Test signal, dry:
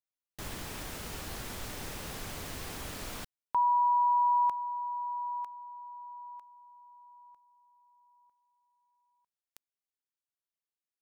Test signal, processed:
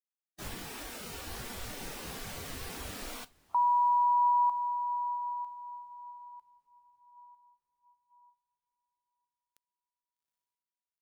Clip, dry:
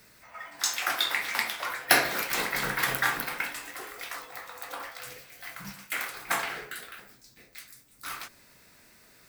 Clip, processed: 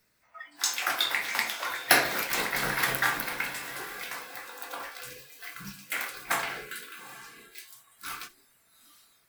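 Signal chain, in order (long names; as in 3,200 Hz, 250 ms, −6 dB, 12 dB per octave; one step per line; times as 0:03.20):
feedback delay with all-pass diffusion 813 ms, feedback 41%, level −13.5 dB
noise reduction from a noise print of the clip's start 14 dB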